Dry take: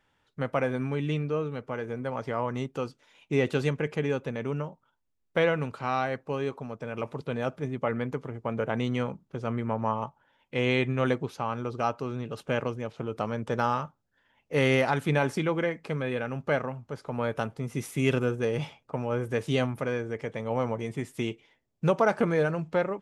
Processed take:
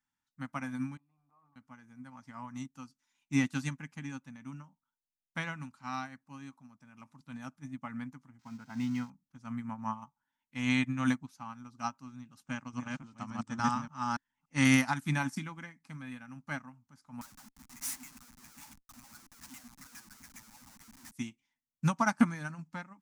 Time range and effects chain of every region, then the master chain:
0:00.97–0:01.56: formant resonators in series a + transient designer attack +5 dB, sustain +11 dB + mains-hum notches 60/120/180/240/300/360/420/480/540/600 Hz
0:08.39–0:09.10: spike at every zero crossing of −26.5 dBFS + high-frequency loss of the air 200 metres + notch comb filter 580 Hz
0:12.44–0:14.65: delay that plays each chunk backwards 288 ms, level −0.5 dB + Butterworth low-pass 9,400 Hz 96 dB per octave
0:17.21–0:21.12: downward compressor, threshold −31 dBFS + auto-filter high-pass saw down 7.3 Hz 200–2,400 Hz + comparator with hysteresis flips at −46.5 dBFS
whole clip: drawn EQ curve 110 Hz 0 dB, 270 Hz +8 dB, 420 Hz −24 dB, 870 Hz +3 dB, 1,800 Hz +4 dB, 3,200 Hz +1 dB, 5,800 Hz +14 dB; expander for the loud parts 2.5 to 1, over −33 dBFS

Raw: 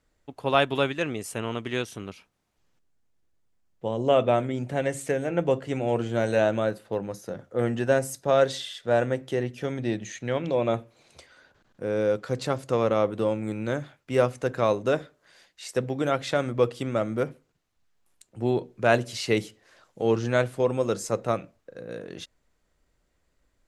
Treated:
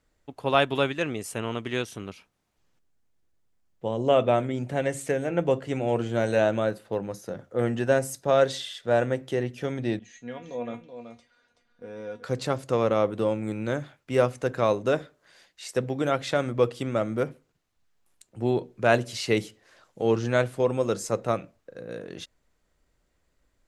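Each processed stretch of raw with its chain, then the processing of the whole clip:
0:09.99–0:12.24: Bessel low-pass filter 6,600 Hz + tuned comb filter 240 Hz, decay 0.17 s, mix 90% + single-tap delay 378 ms −9 dB
whole clip: no processing

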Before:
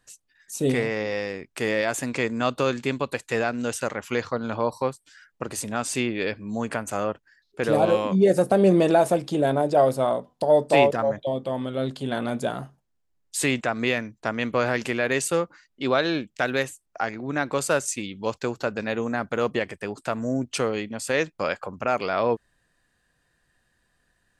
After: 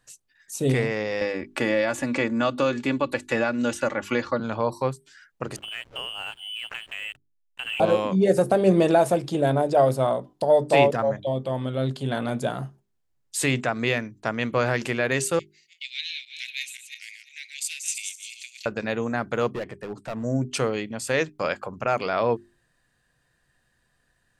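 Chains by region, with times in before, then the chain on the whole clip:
0:01.21–0:04.40: high-shelf EQ 5,500 Hz −9.5 dB + comb filter 3.5 ms + multiband upward and downward compressor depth 70%
0:05.56–0:07.80: voice inversion scrambler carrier 3,200 Hz + downward compressor 2.5 to 1, threshold −32 dBFS + slack as between gear wheels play −39.5 dBFS
0:15.39–0:18.66: feedback delay that plays each chunk backwards 173 ms, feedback 43%, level −6 dB + Butterworth high-pass 2,100 Hz 72 dB per octave + gain into a clipping stage and back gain 15.5 dB
0:19.53–0:20.24: high-shelf EQ 2,400 Hz −11.5 dB + hard clipping −27 dBFS
whole clip: parametric band 130 Hz +7 dB 0.25 octaves; mains-hum notches 50/100/150/200/250/300/350/400 Hz

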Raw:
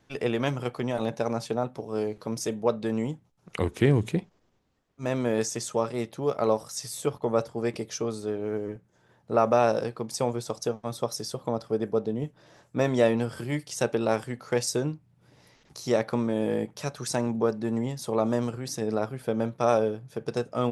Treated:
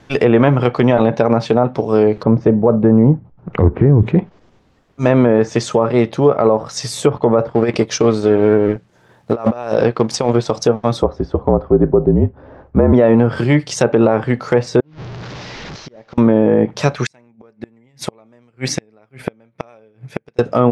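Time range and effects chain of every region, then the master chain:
0:02.23–0:04.03: low-pass filter 1,300 Hz + low-shelf EQ 170 Hz +8.5 dB
0:07.49–0:10.50: mu-law and A-law mismatch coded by A + low-shelf EQ 220 Hz −2 dB + compressor whose output falls as the input rises −30 dBFS, ratio −0.5
0:11.02–0:12.93: low-pass filter 1,100 Hz + frequency shifter −50 Hz
0:14.80–0:16.18: linear delta modulator 32 kbit/s, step −37.5 dBFS + gate with flip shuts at −21 dBFS, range −31 dB + downward compressor 12 to 1, threshold −47 dBFS
0:16.94–0:20.39: parametric band 2,200 Hz +12.5 dB 0.61 octaves + gate with flip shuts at −21 dBFS, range −34 dB + expander for the loud parts, over −47 dBFS
whole clip: treble cut that deepens with the level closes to 1,600 Hz, closed at −22 dBFS; high-shelf EQ 6,700 Hz −10 dB; boost into a limiter +19 dB; level −1 dB

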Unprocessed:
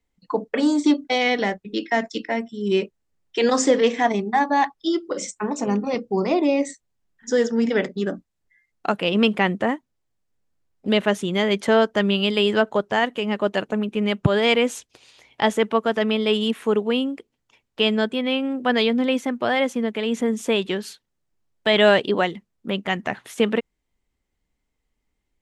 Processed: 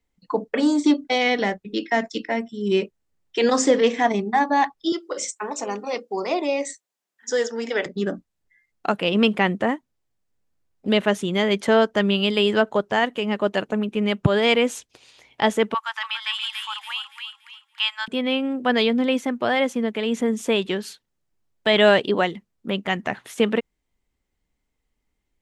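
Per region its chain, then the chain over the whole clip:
0:04.92–0:07.86: high-pass filter 460 Hz + high-shelf EQ 5,000 Hz +4.5 dB
0:15.74–0:18.08: Butterworth high-pass 840 Hz 72 dB per octave + delay with a high-pass on its return 284 ms, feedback 35%, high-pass 1,500 Hz, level −5 dB
whole clip: no processing

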